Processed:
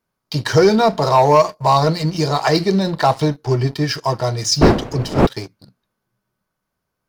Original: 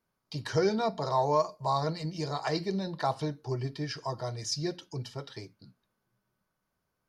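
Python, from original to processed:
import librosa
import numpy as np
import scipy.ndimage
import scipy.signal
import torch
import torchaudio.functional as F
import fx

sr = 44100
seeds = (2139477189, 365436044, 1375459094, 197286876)

y = fx.dmg_wind(x, sr, seeds[0], corner_hz=460.0, level_db=-32.0, at=(4.61, 5.25), fade=0.02)
y = fx.leveller(y, sr, passes=2)
y = y * librosa.db_to_amplitude(8.0)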